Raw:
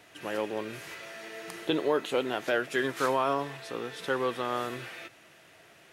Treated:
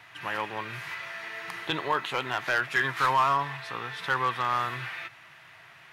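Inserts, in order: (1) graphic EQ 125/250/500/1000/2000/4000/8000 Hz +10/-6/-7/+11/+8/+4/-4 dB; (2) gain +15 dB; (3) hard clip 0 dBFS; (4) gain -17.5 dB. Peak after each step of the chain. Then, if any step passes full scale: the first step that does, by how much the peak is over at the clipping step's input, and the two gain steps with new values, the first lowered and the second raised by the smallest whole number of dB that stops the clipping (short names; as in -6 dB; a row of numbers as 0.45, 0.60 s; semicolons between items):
-8.0, +7.0, 0.0, -17.5 dBFS; step 2, 7.0 dB; step 2 +8 dB, step 4 -10.5 dB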